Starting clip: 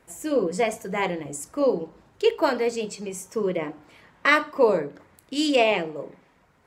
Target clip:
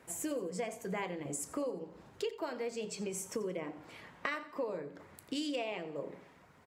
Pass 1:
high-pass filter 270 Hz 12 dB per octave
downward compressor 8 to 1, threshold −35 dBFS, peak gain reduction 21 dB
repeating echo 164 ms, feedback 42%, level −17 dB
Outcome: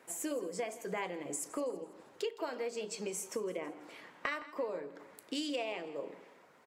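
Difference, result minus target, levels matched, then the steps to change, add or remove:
echo 76 ms late; 125 Hz band −7.0 dB
change: high-pass filter 70 Hz 12 dB per octave
change: repeating echo 88 ms, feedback 42%, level −17 dB

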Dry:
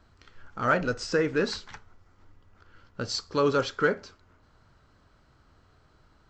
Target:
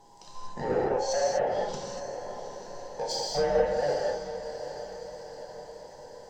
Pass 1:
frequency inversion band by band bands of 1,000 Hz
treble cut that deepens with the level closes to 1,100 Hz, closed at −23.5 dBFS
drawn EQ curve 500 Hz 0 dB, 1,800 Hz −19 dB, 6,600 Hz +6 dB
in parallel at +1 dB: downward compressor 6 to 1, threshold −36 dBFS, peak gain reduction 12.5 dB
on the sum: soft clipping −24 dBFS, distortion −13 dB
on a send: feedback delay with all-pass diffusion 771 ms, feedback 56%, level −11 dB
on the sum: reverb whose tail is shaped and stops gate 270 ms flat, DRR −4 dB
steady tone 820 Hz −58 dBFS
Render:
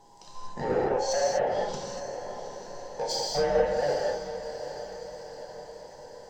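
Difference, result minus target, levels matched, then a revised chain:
downward compressor: peak gain reduction −5.5 dB
frequency inversion band by band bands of 1,000 Hz
treble cut that deepens with the level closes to 1,100 Hz, closed at −23.5 dBFS
drawn EQ curve 500 Hz 0 dB, 1,800 Hz −19 dB, 6,600 Hz +6 dB
in parallel at +1 dB: downward compressor 6 to 1, threshold −42.5 dBFS, peak gain reduction 18 dB
on the sum: soft clipping −24 dBFS, distortion −14 dB
on a send: feedback delay with all-pass diffusion 771 ms, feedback 56%, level −11 dB
on the sum: reverb whose tail is shaped and stops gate 270 ms flat, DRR −4 dB
steady tone 820 Hz −58 dBFS

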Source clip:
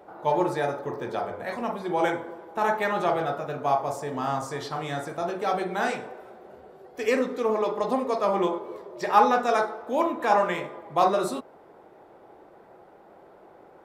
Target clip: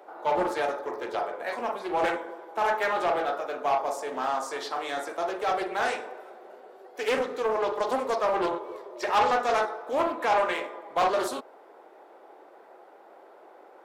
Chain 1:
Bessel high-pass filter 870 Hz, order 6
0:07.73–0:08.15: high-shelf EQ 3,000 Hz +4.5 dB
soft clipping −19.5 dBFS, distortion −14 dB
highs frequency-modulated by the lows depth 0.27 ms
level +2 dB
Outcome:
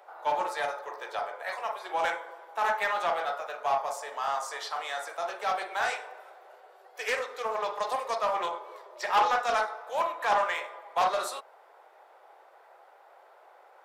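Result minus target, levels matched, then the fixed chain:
500 Hz band −3.5 dB
Bessel high-pass filter 430 Hz, order 6
0:07.73–0:08.15: high-shelf EQ 3,000 Hz +4.5 dB
soft clipping −19.5 dBFS, distortion −12 dB
highs frequency-modulated by the lows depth 0.27 ms
level +2 dB

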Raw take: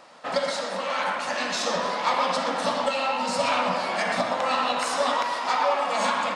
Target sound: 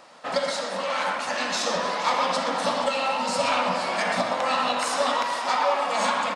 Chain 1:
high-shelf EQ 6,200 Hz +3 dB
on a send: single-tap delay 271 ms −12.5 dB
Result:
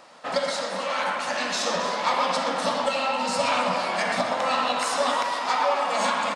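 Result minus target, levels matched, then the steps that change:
echo 203 ms early
change: single-tap delay 474 ms −12.5 dB

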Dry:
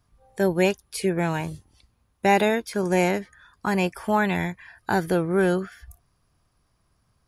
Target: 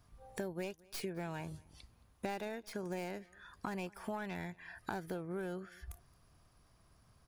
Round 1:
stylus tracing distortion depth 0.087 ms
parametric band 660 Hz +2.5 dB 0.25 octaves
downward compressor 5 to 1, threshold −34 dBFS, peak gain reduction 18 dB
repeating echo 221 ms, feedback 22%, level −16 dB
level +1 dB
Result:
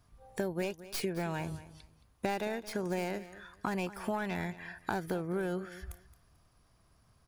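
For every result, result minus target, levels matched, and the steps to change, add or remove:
downward compressor: peak gain reduction −6.5 dB; echo-to-direct +9 dB
change: downward compressor 5 to 1, threshold −42 dBFS, peak gain reduction 24.5 dB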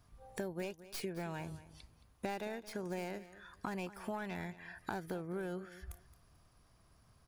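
echo-to-direct +9 dB
change: repeating echo 221 ms, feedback 22%, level −25 dB

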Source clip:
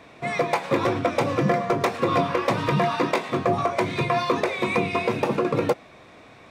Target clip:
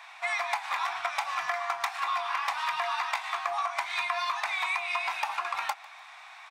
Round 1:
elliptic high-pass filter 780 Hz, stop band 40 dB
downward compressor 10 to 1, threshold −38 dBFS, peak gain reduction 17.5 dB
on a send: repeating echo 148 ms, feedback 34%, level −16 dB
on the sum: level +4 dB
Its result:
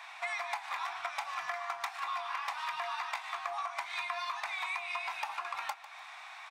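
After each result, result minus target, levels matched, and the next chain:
downward compressor: peak gain reduction +6.5 dB; echo-to-direct +6.5 dB
elliptic high-pass filter 780 Hz, stop band 40 dB
downward compressor 10 to 1, threshold −30.5 dBFS, peak gain reduction 11 dB
on a send: repeating echo 148 ms, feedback 34%, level −16 dB
on the sum: level +4 dB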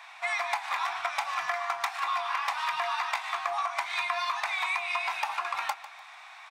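echo-to-direct +6.5 dB
elliptic high-pass filter 780 Hz, stop band 40 dB
downward compressor 10 to 1, threshold −30.5 dBFS, peak gain reduction 11 dB
on a send: repeating echo 148 ms, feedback 34%, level −22.5 dB
on the sum: level +4 dB

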